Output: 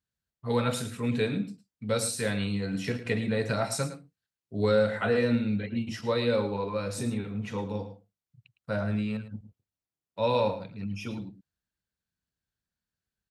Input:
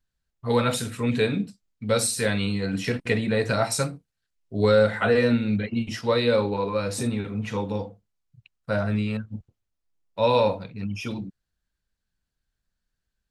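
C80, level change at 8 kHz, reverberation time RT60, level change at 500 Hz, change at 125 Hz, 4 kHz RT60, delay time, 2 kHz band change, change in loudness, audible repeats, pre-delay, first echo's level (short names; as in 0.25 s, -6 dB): none, -6.0 dB, none, -5.0 dB, -4.0 dB, none, 0.109 s, -6.0 dB, -5.0 dB, 1, none, -13.0 dB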